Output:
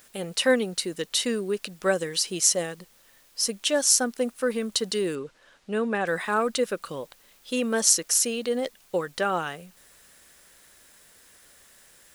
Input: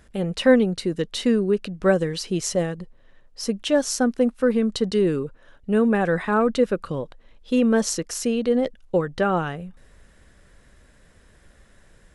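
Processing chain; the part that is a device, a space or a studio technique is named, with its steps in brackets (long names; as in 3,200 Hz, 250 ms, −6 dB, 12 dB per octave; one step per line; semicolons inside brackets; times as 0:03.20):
turntable without a phono preamp (RIAA equalisation recording; white noise bed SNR 31 dB)
0:05.15–0:06.07: high-frequency loss of the air 84 metres
level −2.5 dB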